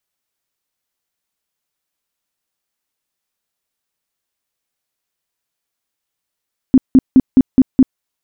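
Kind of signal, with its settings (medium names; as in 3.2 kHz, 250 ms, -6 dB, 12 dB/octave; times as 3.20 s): tone bursts 261 Hz, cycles 10, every 0.21 s, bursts 6, -3 dBFS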